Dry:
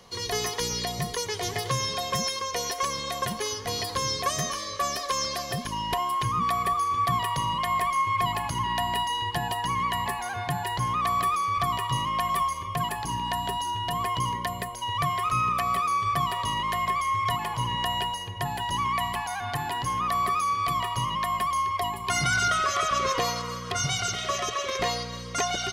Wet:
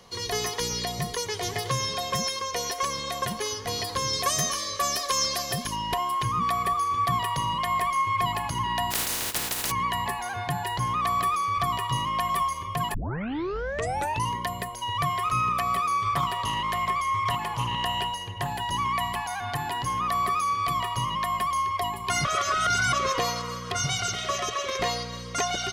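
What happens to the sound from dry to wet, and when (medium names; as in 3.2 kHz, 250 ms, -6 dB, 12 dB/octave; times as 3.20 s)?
4.13–5.76 s: treble shelf 4.4 kHz +7.5 dB
8.90–9.70 s: spectral contrast reduction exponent 0.14
12.94 s: tape start 1.36 s
16.03–18.53 s: loudspeaker Doppler distortion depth 0.15 ms
22.25–22.93 s: reverse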